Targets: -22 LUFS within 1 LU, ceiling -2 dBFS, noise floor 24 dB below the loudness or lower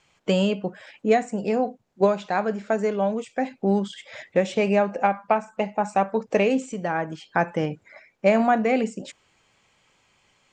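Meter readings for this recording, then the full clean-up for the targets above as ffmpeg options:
loudness -24.0 LUFS; peak level -6.5 dBFS; loudness target -22.0 LUFS
-> -af "volume=1.26"

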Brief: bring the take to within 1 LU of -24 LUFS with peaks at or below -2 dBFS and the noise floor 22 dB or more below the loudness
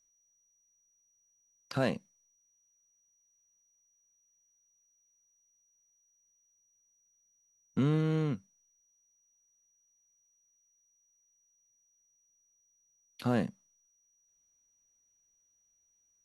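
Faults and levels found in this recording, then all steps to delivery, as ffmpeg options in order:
steady tone 5.8 kHz; tone level -70 dBFS; loudness -33.0 LUFS; peak level -16.5 dBFS; loudness target -24.0 LUFS
-> -af "bandreject=f=5800:w=30"
-af "volume=2.82"

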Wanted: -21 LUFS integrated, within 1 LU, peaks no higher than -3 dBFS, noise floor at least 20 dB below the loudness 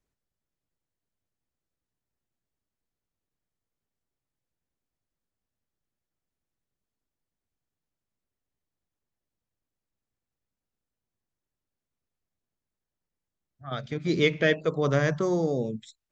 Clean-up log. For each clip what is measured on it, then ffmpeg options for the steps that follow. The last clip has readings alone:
loudness -26.0 LUFS; peak level -9.0 dBFS; loudness target -21.0 LUFS
-> -af "volume=1.78"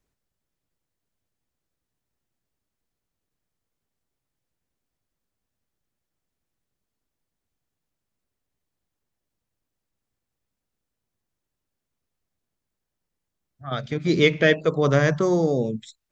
loudness -21.0 LUFS; peak level -4.0 dBFS; noise floor -84 dBFS

